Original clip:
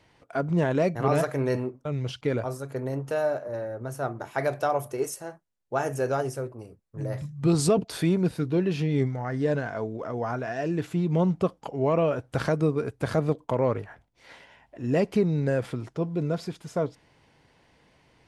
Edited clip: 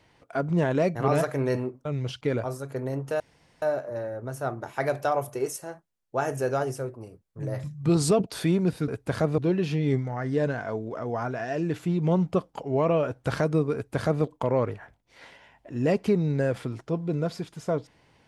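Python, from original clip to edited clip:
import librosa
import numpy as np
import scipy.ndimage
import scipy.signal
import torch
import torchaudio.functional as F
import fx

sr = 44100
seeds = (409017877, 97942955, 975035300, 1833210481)

y = fx.edit(x, sr, fx.insert_room_tone(at_s=3.2, length_s=0.42),
    fx.duplicate(start_s=12.82, length_s=0.5, to_s=8.46), tone=tone)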